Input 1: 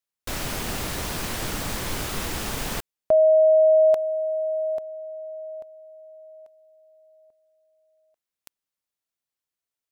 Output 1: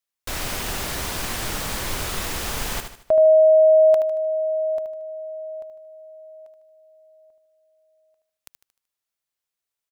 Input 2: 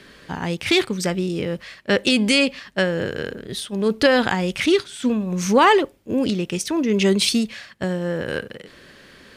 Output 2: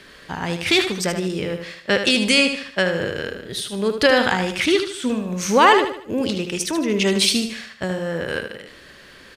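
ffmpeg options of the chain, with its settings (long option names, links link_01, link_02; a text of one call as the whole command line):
ffmpeg -i in.wav -filter_complex "[0:a]equalizer=frequency=200:width=0.52:gain=-5,asplit=2[link_01][link_02];[link_02]aecho=0:1:76|152|228|304|380:0.398|0.159|0.0637|0.0255|0.0102[link_03];[link_01][link_03]amix=inputs=2:normalize=0,volume=2dB" out.wav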